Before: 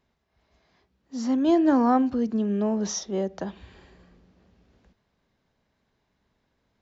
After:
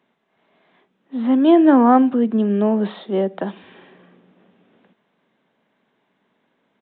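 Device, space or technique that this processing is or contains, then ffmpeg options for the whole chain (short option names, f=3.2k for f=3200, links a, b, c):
Bluetooth headset: -af "highpass=f=180:w=0.5412,highpass=f=180:w=1.3066,aresample=8000,aresample=44100,volume=8dB" -ar 16000 -c:a sbc -b:a 64k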